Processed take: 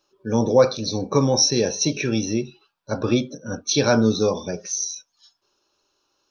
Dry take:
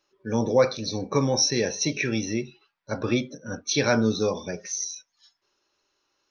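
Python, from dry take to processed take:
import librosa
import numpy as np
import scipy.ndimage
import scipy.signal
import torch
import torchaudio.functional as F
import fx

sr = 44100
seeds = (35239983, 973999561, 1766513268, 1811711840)

y = fx.peak_eq(x, sr, hz=2000.0, db=-13.5, octaves=0.42)
y = F.gain(torch.from_numpy(y), 4.5).numpy()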